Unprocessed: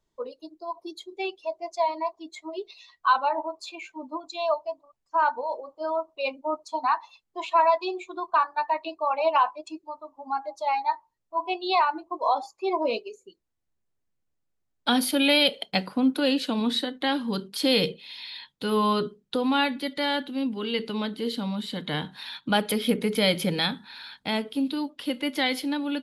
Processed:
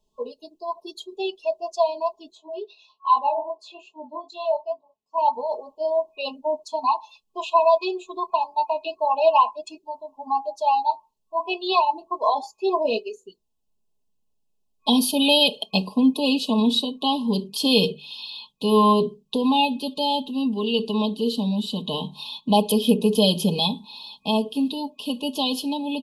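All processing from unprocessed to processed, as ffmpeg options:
-filter_complex "[0:a]asettb=1/sr,asplit=3[a][b][c];[a]atrim=end=2.324[d];[b]atrim=start=2.32:end=5.18,asetpts=PTS-STARTPTS,afade=t=in:d=0.004:c=qsin,afade=t=out:st=2.856:d=0.004:c=qsin,highpass=f=250:p=1,aemphasis=mode=reproduction:type=75fm,flanger=delay=19.5:depth=3.6:speed=2.4[e];[c]atrim=start=5.176[f];[d][e]acrossfade=d=0.004:c1=hsin:c2=qsin[g];[g][f]acrossfade=d=0.004:c1=qsin:c2=hsin,bandreject=f=50:t=h:w=6,bandreject=f=100:t=h:w=6,bandreject=f=150:t=h:w=6,afftfilt=real='re*(1-between(b*sr/4096,1100,2500))':imag='im*(1-between(b*sr/4096,1100,2500))':win_size=4096:overlap=0.75,aecho=1:1:4.7:0.65,volume=2.5dB"

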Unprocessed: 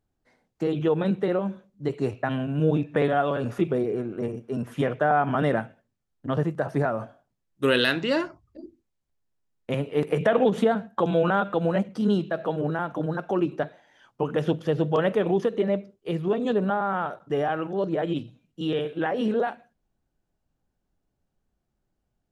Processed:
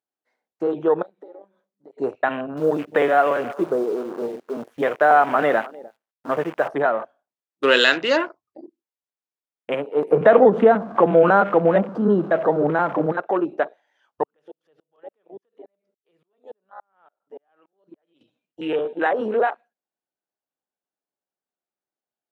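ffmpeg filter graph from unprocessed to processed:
-filter_complex "[0:a]asettb=1/sr,asplit=3[a][b][c];[a]atrim=end=1.024[d];[b]atrim=start=1.02:end=1.98,asetpts=PTS-STARTPTS,afade=t=in:d=0.004:c=qsin,afade=t=out:st=0.956:d=0.004:c=qsin,aeval=exprs='(tanh(10*val(0)+0.6)-tanh(0.6))/10':c=same,acompressor=threshold=-40dB:ratio=10:attack=3.2:release=140:knee=1:detection=peak,equalizer=f=2.7k:w=5.4:g=-9[e];[c]atrim=start=1.976[f];[d][e]acrossfade=d=0.004:c1=hsin:c2=qsin[g];[g][f]acrossfade=d=0.004:c1=qsin:c2=hsin,asettb=1/sr,asplit=3[h][i][j];[h]atrim=end=2.574[k];[i]atrim=start=2.57:end=6.68,asetpts=PTS-STARTPTS,afade=t=in:d=0.004:c=qsin,afade=t=out:st=4.106:d=0.004:c=qsin,acrusher=bits=7:dc=4:mix=0:aa=0.000001,aecho=1:1:303:0.119,atrim=end_sample=181251[l];[j]atrim=start=6.676[m];[k][l]acrossfade=d=0.004:c1=hsin:c2=qsin[n];[n][m]acrossfade=d=0.004:c1=qsin:c2=hsin,asettb=1/sr,asplit=3[o][p][q];[o]atrim=end=10.114[r];[p]atrim=start=10.11:end=13.12,asetpts=PTS-STARTPTS,afade=t=in:d=0.004:c=qsin,afade=t=out:st=3.006:d=0.004:c=qsin,aeval=exprs='val(0)+0.5*0.02*sgn(val(0))':c=same,aemphasis=mode=reproduction:type=riaa[s];[q]atrim=start=13.116[t];[r][s]acrossfade=d=0.004:c1=hsin:c2=qsin[u];[u][t]acrossfade=d=0.004:c1=qsin:c2=hsin,asettb=1/sr,asplit=3[v][w][x];[v]atrim=end=14.234[y];[w]atrim=start=14.23:end=18.21,asetpts=PTS-STARTPTS,afade=t=in:d=0.004:c=qsin,afade=t=out:st=3.976:d=0.004:c=qsin,acompressor=threshold=-41dB:ratio=3:attack=3.2:release=140:knee=1:detection=peak,aeval=exprs='val(0)*pow(10,-32*if(lt(mod(-3.5*n/s,1),2*abs(-3.5)/1000),1-mod(-3.5*n/s,1)/(2*abs(-3.5)/1000),(mod(-3.5*n/s,1)-2*abs(-3.5)/1000)/(1-2*abs(-3.5)/1000))/20)':c=same[z];[x]atrim=start=18.206[aa];[y][z]acrossfade=d=0.004:c1=hsin:c2=qsin[ab];[ab][aa]acrossfade=d=0.004:c1=qsin:c2=hsin,highpass=390,equalizer=f=1.3k:w=0.32:g=3.5,afwtdn=0.0158,volume=4.5dB"

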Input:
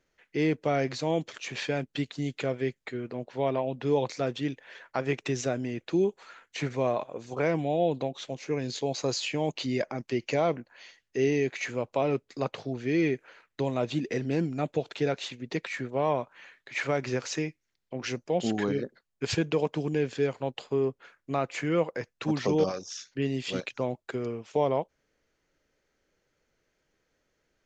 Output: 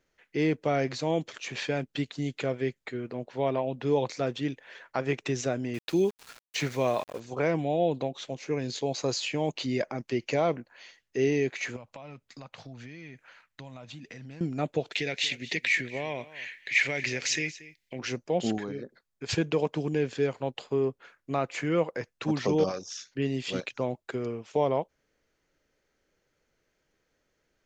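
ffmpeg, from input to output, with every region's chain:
-filter_complex "[0:a]asettb=1/sr,asplit=3[a][b][c];[a]atrim=end=5.744[d];[b]atrim=start=5.74:end=7.2,asetpts=PTS-STARTPTS,afade=t=in:d=0.004:c=qsin,afade=t=out:st=1.456:d=0.004:c=qsin,equalizer=f=5.4k:t=o:w=2.5:g=7.5,aeval=exprs='val(0)*gte(abs(val(0)),0.0075)':c=same[e];[c]atrim=start=7.196[f];[d][e]acrossfade=d=0.004:c1=hsin:c2=qsin[g];[g][f]acrossfade=d=0.004:c1=qsin:c2=hsin,asettb=1/sr,asplit=3[h][i][j];[h]atrim=end=11.764[k];[i]atrim=start=11.76:end=14.41,asetpts=PTS-STARTPTS,afade=t=in:d=0.004:c=qsin,afade=t=out:st=2.646:d=0.004:c=qsin,equalizer=f=390:t=o:w=0.88:g=-14.5,acompressor=threshold=-40dB:ratio=10:attack=3.2:release=140:knee=1:detection=peak[l];[j]atrim=start=14.406[m];[k][l]acrossfade=d=0.004:c1=hsin:c2=qsin[n];[n][m]acrossfade=d=0.004:c1=qsin:c2=hsin,asettb=1/sr,asplit=3[o][p][q];[o]atrim=end=14.924[r];[p]atrim=start=14.92:end=17.99,asetpts=PTS-STARTPTS,afade=t=in:d=0.004:c=qsin,afade=t=out:st=3.066:d=0.004:c=qsin,acompressor=threshold=-33dB:ratio=2:attack=3.2:release=140:knee=1:detection=peak,highshelf=f=1.6k:t=q:w=3:g=8,aecho=1:1:231:0.126,atrim=end_sample=135387[s];[q]atrim=start=17.986[t];[r][s]acrossfade=d=0.004:c1=hsin:c2=qsin[u];[u][t]acrossfade=d=0.004:c1=qsin:c2=hsin,asettb=1/sr,asplit=3[v][w][x];[v]atrim=end=18.584[y];[w]atrim=start=18.58:end=19.29,asetpts=PTS-STARTPTS,afade=t=in:d=0.004:c=qsin,afade=t=out:st=0.706:d=0.004:c=qsin,bandreject=f=2.9k:w=9.6,acompressor=threshold=-45dB:ratio=1.5:attack=3.2:release=140:knee=1:detection=peak[z];[x]atrim=start=19.286[aa];[y][z]acrossfade=d=0.004:c1=hsin:c2=qsin[ab];[ab][aa]acrossfade=d=0.004:c1=qsin:c2=hsin"

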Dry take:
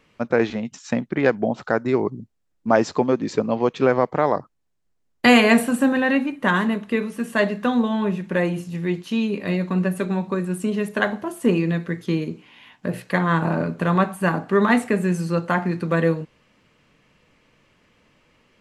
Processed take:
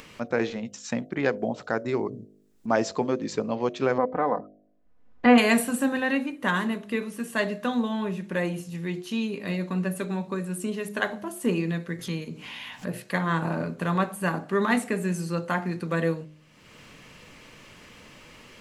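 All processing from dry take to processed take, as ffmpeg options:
-filter_complex "[0:a]asettb=1/sr,asplit=3[a][b][c];[a]atrim=end=3.984[d];[b]atrim=start=3.98:end=5.38,asetpts=PTS-STARTPTS,afade=t=in:d=0.004:c=qsin,afade=t=out:st=1.396:d=0.004:c=qsin,lowpass=1.6k,aecho=1:1:4:0.63,atrim=end_sample=61740[e];[c]atrim=start=5.376[f];[d][e]acrossfade=d=0.004:c1=hsin:c2=qsin[g];[g][f]acrossfade=d=0.004:c1=qsin:c2=hsin,asettb=1/sr,asplit=3[h][i][j];[h]atrim=end=11.994[k];[i]atrim=start=11.99:end=12.87,asetpts=PTS-STARTPTS,afade=t=in:d=0.004:c=qsin,afade=t=out:st=0.876:d=0.004:c=qsin,acompressor=mode=upward:threshold=-24dB:ratio=2.5:attack=3.2:release=140:knee=2.83:detection=peak,equalizer=f=350:t=o:w=0.38:g=-9.5[l];[j]atrim=start=12.866[m];[k][l]acrossfade=d=0.004:c1=hsin:c2=qsin[n];[n][m]acrossfade=d=0.004:c1=qsin:c2=hsin,highshelf=f=4.3k:g=8,bandreject=f=51.26:t=h:w=4,bandreject=f=102.52:t=h:w=4,bandreject=f=153.78:t=h:w=4,bandreject=f=205.04:t=h:w=4,bandreject=f=256.3:t=h:w=4,bandreject=f=307.56:t=h:w=4,bandreject=f=358.82:t=h:w=4,bandreject=f=410.08:t=h:w=4,bandreject=f=461.34:t=h:w=4,bandreject=f=512.6:t=h:w=4,bandreject=f=563.86:t=h:w=4,bandreject=f=615.12:t=h:w=4,bandreject=f=666.38:t=h:w=4,bandreject=f=717.64:t=h:w=4,acompressor=mode=upward:threshold=-28dB:ratio=2.5,volume=-6dB"

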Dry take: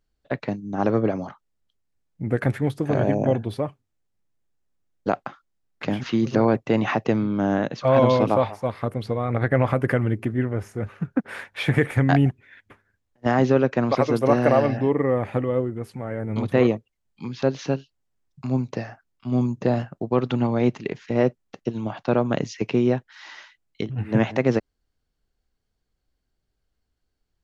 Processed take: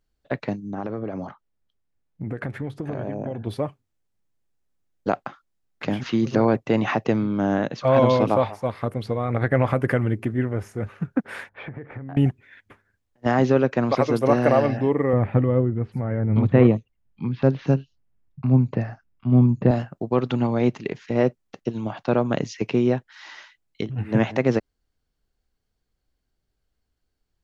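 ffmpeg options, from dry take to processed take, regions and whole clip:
-filter_complex "[0:a]asettb=1/sr,asplit=3[a][b][c];[a]atrim=end=0.714[d];[b]atrim=start=0.71:end=3.47,asetpts=PTS-STARTPTS,afade=t=in:d=0.004:c=qsin,afade=t=out:st=2.756:d=0.004:c=qsin,highshelf=f=4.9k:g=-11,acompressor=threshold=-25dB:ratio=6:attack=3.2:release=140:knee=1:detection=peak[e];[c]atrim=start=3.466[f];[d][e]acrossfade=d=0.004:c1=hsin:c2=qsin[g];[g][f]acrossfade=d=0.004:c1=qsin:c2=hsin,asettb=1/sr,asplit=3[h][i][j];[h]atrim=end=11.494[k];[i]atrim=start=11.49:end=12.17,asetpts=PTS-STARTPTS,afade=t=in:d=0.004:c=qsin,afade=t=out:st=0.676:d=0.004:c=qsin,lowpass=1.4k,aemphasis=mode=reproduction:type=50fm,acompressor=threshold=-32dB:ratio=8:attack=3.2:release=140:knee=1:detection=peak[l];[j]atrim=start=12.166[m];[k][l]acrossfade=d=0.004:c1=hsin:c2=qsin[n];[n][m]acrossfade=d=0.004:c1=qsin:c2=hsin,asettb=1/sr,asplit=3[o][p][q];[o]atrim=end=15.134[r];[p]atrim=start=15.13:end=19.71,asetpts=PTS-STARTPTS,afade=t=in:d=0.004:c=qsin,afade=t=out:st=4.576:d=0.004:c=qsin,bass=f=250:g=9,treble=f=4k:g=-14,acrossover=split=5000[s][t];[t]adelay=80[u];[s][u]amix=inputs=2:normalize=0,atrim=end_sample=201978[v];[q]atrim=start=19.706[w];[r][v]acrossfade=d=0.004:c1=hsin:c2=qsin[x];[x][w]acrossfade=d=0.004:c1=qsin:c2=hsin"

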